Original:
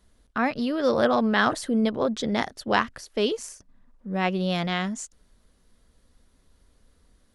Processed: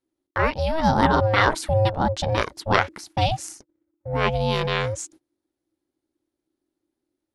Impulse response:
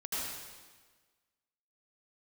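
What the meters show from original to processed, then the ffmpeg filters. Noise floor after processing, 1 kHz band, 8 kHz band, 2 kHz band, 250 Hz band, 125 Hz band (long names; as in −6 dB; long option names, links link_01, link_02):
−85 dBFS, +5.5 dB, +3.0 dB, +3.0 dB, −3.0 dB, +10.5 dB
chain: -af "aeval=exprs='val(0)*sin(2*PI*320*n/s)':channel_layout=same,agate=range=-24dB:threshold=-52dB:ratio=16:detection=peak,volume=6dB"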